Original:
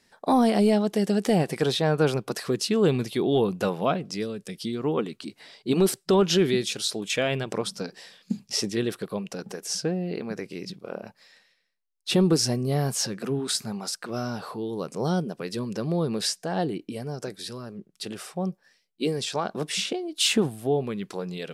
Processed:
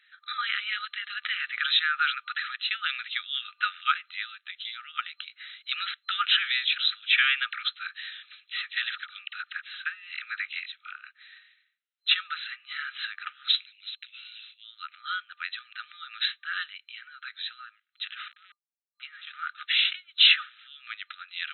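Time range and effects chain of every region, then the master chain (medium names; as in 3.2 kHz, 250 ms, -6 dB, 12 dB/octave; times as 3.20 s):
6.30–10.91 s: phase dispersion lows, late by 48 ms, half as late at 800 Hz + three bands compressed up and down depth 40%
13.48–14.64 s: steep high-pass 2.5 kHz + waveshaping leveller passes 1
18.28–19.49 s: low-pass 1.5 kHz + small samples zeroed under -44 dBFS
whole clip: FFT band-pass 1.2–4.1 kHz; dynamic bell 1.7 kHz, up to +3 dB, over -43 dBFS, Q 0.91; trim +6.5 dB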